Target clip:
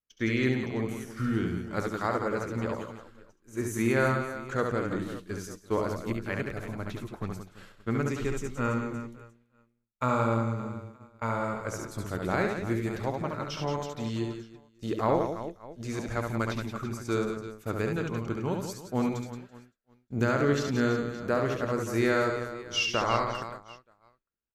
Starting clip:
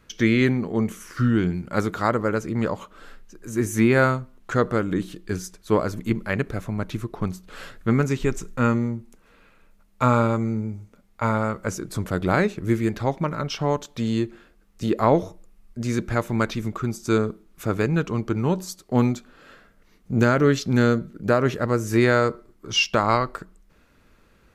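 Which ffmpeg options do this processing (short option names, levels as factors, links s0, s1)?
-af "equalizer=f=170:w=1.2:g=-3.5,aecho=1:1:70|175|332.5|568.8|923.1:0.631|0.398|0.251|0.158|0.1,agate=range=0.0224:threshold=0.0398:ratio=3:detection=peak,volume=0.398"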